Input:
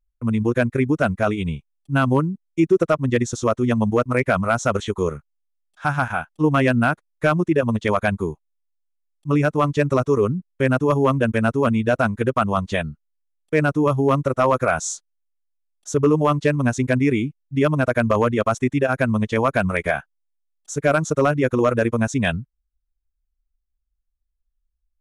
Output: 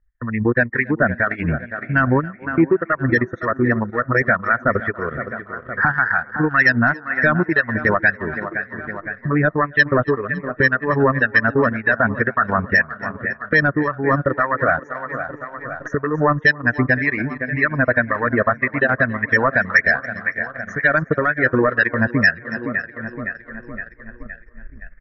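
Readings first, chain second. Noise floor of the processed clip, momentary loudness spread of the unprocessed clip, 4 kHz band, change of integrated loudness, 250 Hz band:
-43 dBFS, 7 LU, -1.0 dB, +2.0 dB, -1.0 dB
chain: recorder AGC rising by 20 dB/s; resonant low-pass 1.8 kHz, resonance Q 13; on a send: feedback delay 514 ms, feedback 54%, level -14 dB; on the sum: saturation -6 dBFS, distortion -14 dB; in parallel at +3 dB: compression, threshold -29 dBFS, peak gain reduction 18 dB; on the sum: loudest bins only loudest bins 64; harmonic tremolo 1.9 Hz, depth 70%, crossover 1.3 kHz; two-band feedback delay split 350 Hz, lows 509 ms, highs 278 ms, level -16 dB; transient shaper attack +2 dB, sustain -8 dB

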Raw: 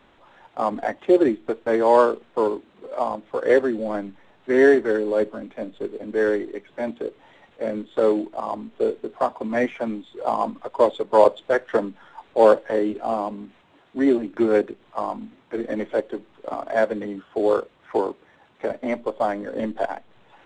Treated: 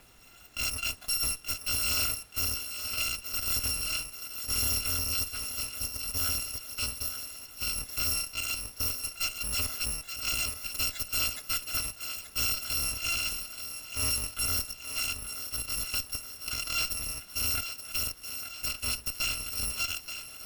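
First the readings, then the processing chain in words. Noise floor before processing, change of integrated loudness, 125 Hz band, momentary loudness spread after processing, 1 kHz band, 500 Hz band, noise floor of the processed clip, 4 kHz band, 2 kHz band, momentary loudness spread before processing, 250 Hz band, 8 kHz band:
-57 dBFS, -7.0 dB, +2.0 dB, 6 LU, -18.5 dB, -31.5 dB, -50 dBFS, +14.0 dB, -4.0 dB, 16 LU, -24.5 dB, no reading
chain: bit-reversed sample order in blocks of 256 samples; tone controls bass +2 dB, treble -9 dB; added noise pink -64 dBFS; valve stage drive 32 dB, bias 0.55; thinning echo 878 ms, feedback 55%, high-pass 280 Hz, level -9 dB; trim +5.5 dB

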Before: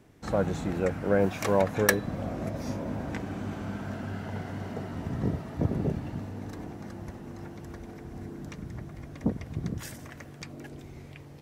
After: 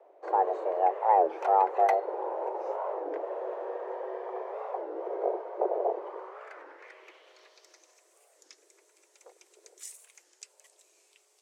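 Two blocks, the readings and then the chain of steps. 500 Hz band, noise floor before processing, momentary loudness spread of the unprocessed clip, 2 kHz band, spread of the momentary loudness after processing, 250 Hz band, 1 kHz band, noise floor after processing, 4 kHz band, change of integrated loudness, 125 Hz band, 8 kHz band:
+0.5 dB, -46 dBFS, 17 LU, -10.5 dB, 21 LU, -15.0 dB, +11.0 dB, -67 dBFS, under -10 dB, +2.0 dB, under -40 dB, no reading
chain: in parallel at -8 dB: overload inside the chain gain 22 dB; on the sum: frequency shift +280 Hz; band-pass sweep 700 Hz -> 7.9 kHz, 5.87–8.05 s; warped record 33 1/3 rpm, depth 250 cents; trim +2 dB

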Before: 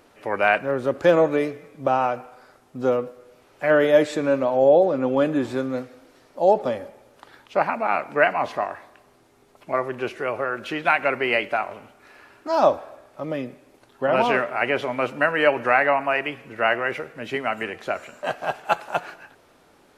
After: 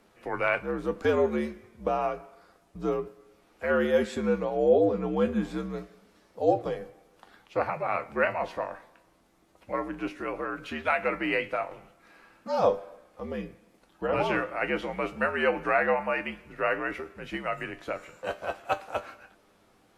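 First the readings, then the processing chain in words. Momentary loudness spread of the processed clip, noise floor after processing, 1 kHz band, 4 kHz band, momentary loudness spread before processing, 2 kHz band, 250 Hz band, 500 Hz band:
13 LU, -63 dBFS, -8.0 dB, -8.0 dB, 13 LU, -7.0 dB, -4.5 dB, -6.5 dB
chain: feedback comb 95 Hz, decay 0.19 s, harmonics all, mix 70%; frequency shift -74 Hz; trim -1.5 dB

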